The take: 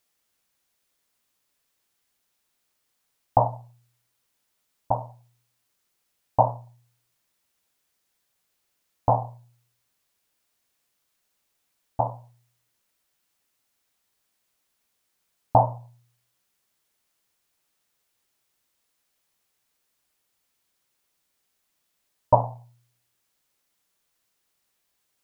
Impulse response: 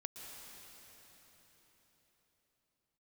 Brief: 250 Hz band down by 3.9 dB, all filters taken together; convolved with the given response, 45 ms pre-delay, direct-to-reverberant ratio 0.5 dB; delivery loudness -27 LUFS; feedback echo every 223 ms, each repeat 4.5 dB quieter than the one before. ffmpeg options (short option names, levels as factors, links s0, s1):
-filter_complex "[0:a]equalizer=f=250:t=o:g=-6,aecho=1:1:223|446|669|892|1115|1338|1561|1784|2007:0.596|0.357|0.214|0.129|0.0772|0.0463|0.0278|0.0167|0.01,asplit=2[s0][s1];[1:a]atrim=start_sample=2205,adelay=45[s2];[s1][s2]afir=irnorm=-1:irlink=0,volume=1.26[s3];[s0][s3]amix=inputs=2:normalize=0"